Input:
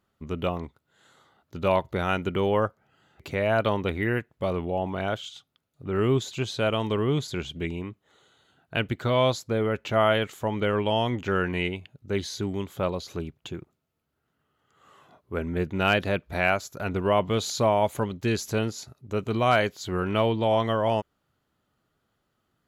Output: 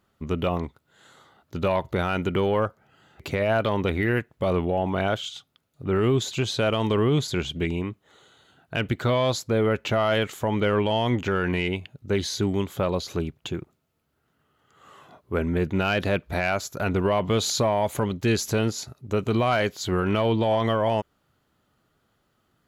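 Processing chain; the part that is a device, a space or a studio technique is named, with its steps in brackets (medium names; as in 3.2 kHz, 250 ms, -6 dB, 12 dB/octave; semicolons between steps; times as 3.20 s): soft clipper into limiter (saturation -12 dBFS, distortion -23 dB; peak limiter -20 dBFS, peak gain reduction 7 dB); trim +5.5 dB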